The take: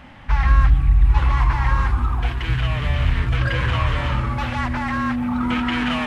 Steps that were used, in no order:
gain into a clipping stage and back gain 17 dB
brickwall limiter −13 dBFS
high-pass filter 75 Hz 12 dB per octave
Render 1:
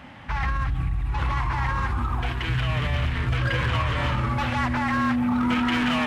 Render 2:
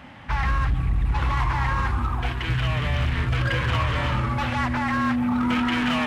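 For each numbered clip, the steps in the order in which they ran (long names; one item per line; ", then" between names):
brickwall limiter, then high-pass filter, then gain into a clipping stage and back
high-pass filter, then brickwall limiter, then gain into a clipping stage and back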